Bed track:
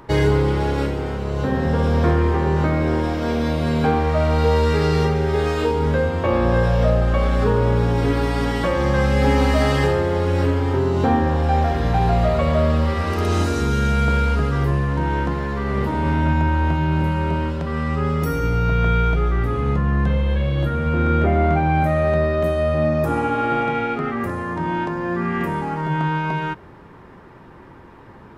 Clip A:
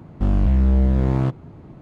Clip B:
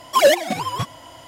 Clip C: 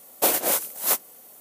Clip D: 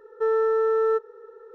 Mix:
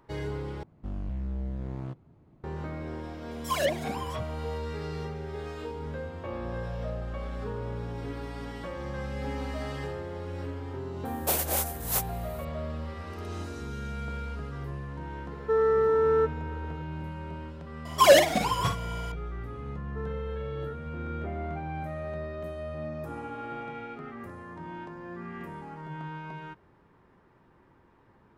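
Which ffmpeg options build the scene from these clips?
-filter_complex "[2:a]asplit=2[a][b];[4:a]asplit=2[c][d];[0:a]volume=-17.5dB[e];[a]acrossover=split=710|4700[f][g][h];[g]adelay=40[i];[f]adelay=80[j];[j][i][h]amix=inputs=3:normalize=0[k];[3:a]acontrast=70[l];[b]aecho=1:1:45|55:0.316|0.335[m];[e]asplit=2[n][o];[n]atrim=end=0.634[p];[1:a]atrim=end=1.81,asetpts=PTS-STARTPTS,volume=-17dB[q];[o]atrim=start=2.436[r];[k]atrim=end=1.27,asetpts=PTS-STARTPTS,volume=-11dB,afade=t=in:d=0.004:c=hsin,afade=t=out:st=1.266:d=0.004:c=hsin,adelay=3310[s];[l]atrim=end=1.4,asetpts=PTS-STARTPTS,volume=-12.5dB,afade=t=in:d=0.004:c=hsin,afade=t=out:st=1.396:d=0.004:c=hsin,adelay=11050[t];[c]atrim=end=1.54,asetpts=PTS-STARTPTS,volume=-1.5dB,afade=t=in:d=0.004:c=hsin,afade=t=out:st=1.536:d=0.004:c=hsin,adelay=15280[u];[m]atrim=end=1.27,asetpts=PTS-STARTPTS,volume=-3dB,afade=t=in:d=0.004:c=hsin,afade=t=out:st=1.266:d=0.004:c=hsin,adelay=17850[v];[d]atrim=end=1.54,asetpts=PTS-STARTPTS,volume=-16.5dB,afade=t=in:d=0.004:c=hsin,afade=t=out:st=1.536:d=0.004:c=hsin,adelay=19750[w];[p][q]acrossfade=d=0.004:c1=hsin:c2=hsin[x];[x][r]acrossfade=d=0.004:c1=hsin:c2=hsin[y];[y][s][t][u][v][w]amix=inputs=6:normalize=0"

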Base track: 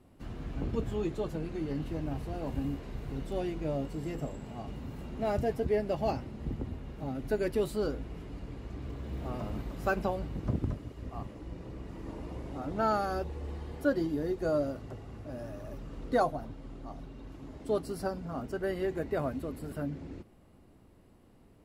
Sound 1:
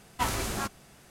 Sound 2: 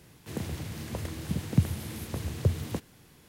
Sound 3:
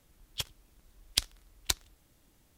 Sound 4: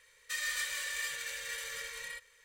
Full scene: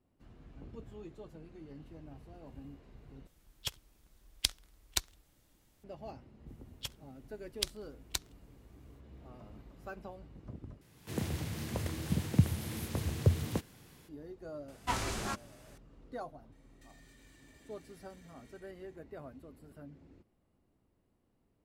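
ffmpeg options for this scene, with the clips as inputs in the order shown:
-filter_complex "[3:a]asplit=2[a][b];[0:a]volume=-15.5dB[c];[2:a]dynaudnorm=f=120:g=3:m=7dB[d];[1:a]acrossover=split=9300[e][f];[f]acompressor=threshold=-53dB:ratio=4:attack=1:release=60[g];[e][g]amix=inputs=2:normalize=0[h];[4:a]acompressor=threshold=-49dB:ratio=6:attack=3.2:release=140:knee=1:detection=peak[i];[c]asplit=3[j][k][l];[j]atrim=end=3.274[m];[a]atrim=end=2.57,asetpts=PTS-STARTPTS,volume=-3dB[n];[k]atrim=start=5.836:end=10.814[o];[d]atrim=end=3.28,asetpts=PTS-STARTPTS,volume=-8dB[p];[l]atrim=start=14.086[q];[b]atrim=end=2.57,asetpts=PTS-STARTPTS,volume=-6.5dB,afade=t=in:d=0.05,afade=t=out:st=2.52:d=0.05,adelay=6450[r];[h]atrim=end=1.1,asetpts=PTS-STARTPTS,volume=-4.5dB,afade=t=in:d=0.004:c=hsin,afade=t=out:st=1.096:d=0.004:c=hsin,adelay=14680[s];[i]atrim=end=2.44,asetpts=PTS-STARTPTS,volume=-14dB,afade=t=in:d=0.004:c=hsin,afade=t=out:st=2.436:d=0.004:c=hsin,adelay=728532S[t];[m][n]acrossfade=d=0.004:c1=hsin:c2=hsin[u];[u][o]acrossfade=d=0.004:c1=hsin:c2=hsin[v];[v][p]acrossfade=d=0.004:c1=hsin:c2=hsin[w];[w][q]acrossfade=d=0.004:c1=hsin:c2=hsin[x];[x][r][s][t]amix=inputs=4:normalize=0"

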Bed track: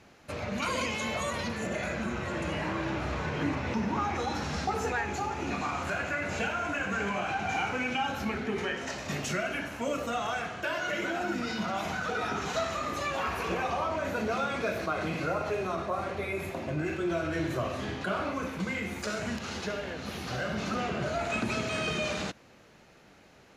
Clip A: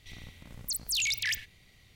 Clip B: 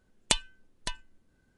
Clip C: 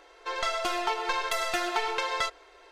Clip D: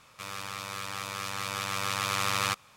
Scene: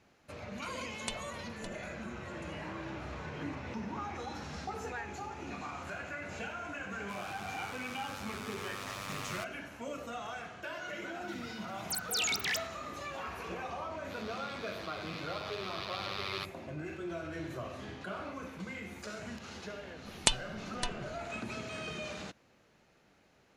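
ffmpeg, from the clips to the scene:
-filter_complex "[2:a]asplit=2[a][b];[4:a]asplit=2[c][d];[0:a]volume=-9.5dB[e];[c]asoftclip=type=tanh:threshold=-22.5dB[f];[1:a]highpass=f=100:w=0.5412,highpass=f=100:w=1.3066[g];[d]highshelf=f=5.8k:t=q:w=3:g=-11.5[h];[a]atrim=end=1.57,asetpts=PTS-STARTPTS,volume=-14.5dB,afade=t=in:d=0.004:c=hsin,afade=t=out:st=1.566:d=0.004:c=hsin,adelay=770[i];[f]atrim=end=2.76,asetpts=PTS-STARTPTS,volume=-10dB,afade=t=in:d=0.004:c=hsin,afade=t=out:st=2.756:d=0.004:c=hsin,adelay=304290S[j];[g]atrim=end=1.95,asetpts=PTS-STARTPTS,volume=-3dB,afade=t=in:d=0.004:c=hsin,afade=t=out:st=1.946:d=0.004:c=hsin,adelay=494802S[k];[h]atrim=end=2.76,asetpts=PTS-STARTPTS,volume=-12.5dB,afade=t=in:d=0.004:c=hsin,afade=t=out:st=2.756:d=0.004:c=hsin,adelay=13910[l];[b]atrim=end=1.57,asetpts=PTS-STARTPTS,volume=-1dB,afade=t=in:d=0.004:c=hsin,afade=t=out:st=1.566:d=0.004:c=hsin,adelay=19960[m];[e][i][j][k][l][m]amix=inputs=6:normalize=0"

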